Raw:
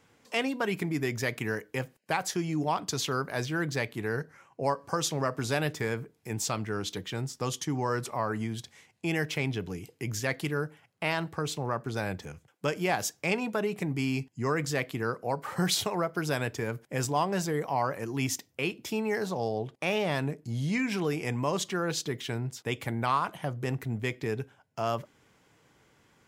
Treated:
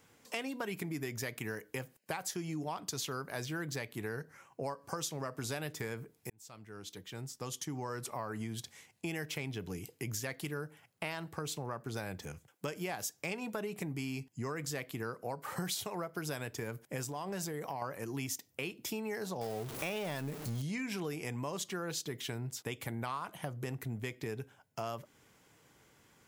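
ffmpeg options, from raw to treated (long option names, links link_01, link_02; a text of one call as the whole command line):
ffmpeg -i in.wav -filter_complex "[0:a]asettb=1/sr,asplit=3[link_01][link_02][link_03];[link_01]atrim=end=17.024[link_04];[link_02]atrim=start=17.02:end=17.82,asetpts=PTS-STARTPTS,afade=type=in:duration=0.004:curve=qsin,afade=type=out:start_time=0.796:duration=0.004:curve=qsin,acompressor=threshold=-29dB:ratio=6:attack=3.2:release=140:knee=1:detection=peak[link_05];[link_03]atrim=start=17.816[link_06];[link_04][link_05]acrossfade=duration=0.004:curve1=hsin:curve2=qsin[link_07];[link_07][link_06]acrossfade=duration=0.004:curve1=qsin:curve2=hsin,asettb=1/sr,asplit=3[link_08][link_09][link_10];[link_08]atrim=end=19.414[link_11];[link_09]atrim=start=19.41:end=20.62,asetpts=PTS-STARTPTS,afade=type=in:duration=0.004:curve=qsin,afade=type=out:start_time=1.206:duration=0.004:curve=qsin,aeval=exprs='val(0)+0.5*0.0188*sgn(val(0))':channel_layout=same[link_12];[link_10]atrim=start=20.616[link_13];[link_11][link_12]acrossfade=duration=0.004:curve1=hsin:curve2=qsin[link_14];[link_14][link_13]acrossfade=duration=0.004:curve1=qsin:curve2=hsin,asplit=2[link_15][link_16];[link_15]atrim=end=6.3,asetpts=PTS-STARTPTS,afade=type=out:start_time=6.296:duration=0.004:curve=hsin[link_17];[link_16]atrim=start=6.3,asetpts=PTS-STARTPTS,afade=type=in:duration=2.28[link_18];[link_17][link_18]concat=n=2:v=0:a=1,highshelf=frequency=8200:gain=11,acompressor=threshold=-34dB:ratio=4,volume=-2dB" out.wav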